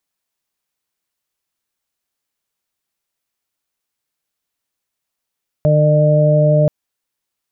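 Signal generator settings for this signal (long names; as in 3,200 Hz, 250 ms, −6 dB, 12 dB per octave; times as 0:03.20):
steady harmonic partials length 1.03 s, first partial 151 Hz, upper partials −14.5/−11.5/−1 dB, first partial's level −11.5 dB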